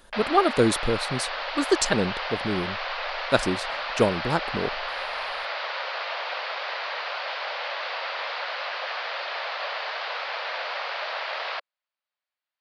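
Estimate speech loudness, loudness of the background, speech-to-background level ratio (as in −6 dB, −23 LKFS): −26.0 LKFS, −30.0 LKFS, 4.0 dB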